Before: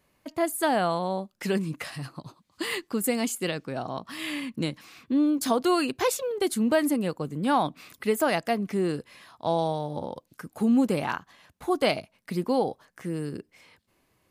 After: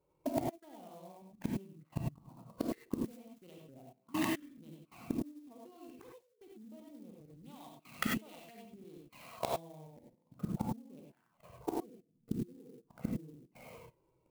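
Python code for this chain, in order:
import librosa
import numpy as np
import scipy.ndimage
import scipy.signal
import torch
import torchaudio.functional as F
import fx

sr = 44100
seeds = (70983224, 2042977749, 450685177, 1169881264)

y = fx.wiener(x, sr, points=25)
y = fx.rider(y, sr, range_db=4, speed_s=0.5)
y = fx.low_shelf_res(y, sr, hz=110.0, db=-6.0, q=1.5)
y = y + 10.0 ** (-9.0 / 20.0) * np.pad(y, (int(91 * sr / 1000.0), 0))[:len(y)]
y = fx.env_flanger(y, sr, rest_ms=2.2, full_db=-23.0)
y = fx.gate_flip(y, sr, shuts_db=-29.0, range_db=-38)
y = fx.peak_eq(y, sr, hz=3800.0, db=12.5, octaves=2.4, at=(7.24, 9.5))
y = fx.spec_box(y, sr, start_s=11.77, length_s=1.11, low_hz=500.0, high_hz=7800.0, gain_db=-24)
y = fx.level_steps(y, sr, step_db=23)
y = fx.rev_gated(y, sr, seeds[0], gate_ms=120, shape='rising', drr_db=-1.5)
y = fx.clock_jitter(y, sr, seeds[1], jitter_ms=0.038)
y = F.gain(torch.from_numpy(y), 13.0).numpy()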